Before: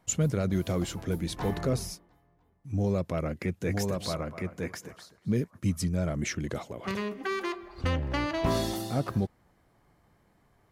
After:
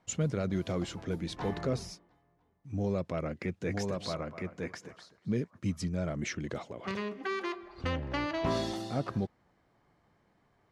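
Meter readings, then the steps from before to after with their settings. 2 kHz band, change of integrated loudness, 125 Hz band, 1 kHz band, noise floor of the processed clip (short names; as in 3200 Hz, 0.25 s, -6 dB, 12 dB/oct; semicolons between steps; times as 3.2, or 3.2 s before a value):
-2.5 dB, -4.0 dB, -5.5 dB, -2.5 dB, -71 dBFS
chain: LPF 5900 Hz 12 dB/oct; low shelf 81 Hz -9 dB; gain -2.5 dB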